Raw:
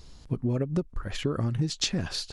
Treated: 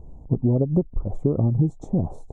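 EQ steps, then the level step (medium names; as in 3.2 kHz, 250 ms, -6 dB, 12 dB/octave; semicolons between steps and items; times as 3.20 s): elliptic band-stop 810–8600 Hz, stop band 40 dB; distance through air 200 m; +8.0 dB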